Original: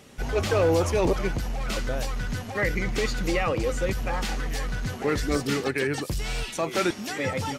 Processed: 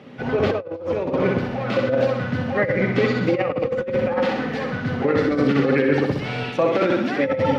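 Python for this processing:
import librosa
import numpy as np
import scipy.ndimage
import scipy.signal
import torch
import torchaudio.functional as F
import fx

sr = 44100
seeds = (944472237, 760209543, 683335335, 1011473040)

p1 = fx.small_body(x, sr, hz=(260.0, 520.0), ring_ms=70, db=7)
p2 = p1 + fx.room_flutter(p1, sr, wall_m=11.0, rt60_s=0.79, dry=0)
p3 = fx.dynamic_eq(p2, sr, hz=530.0, q=6.2, threshold_db=-37.0, ratio=4.0, max_db=6)
p4 = fx.over_compress(p3, sr, threshold_db=-22.0, ratio=-0.5)
p5 = scipy.signal.sosfilt(scipy.signal.butter(4, 110.0, 'highpass', fs=sr, output='sos'), p4)
p6 = fx.air_absorb(p5, sr, metres=330.0)
y = F.gain(torch.from_numpy(p6), 5.0).numpy()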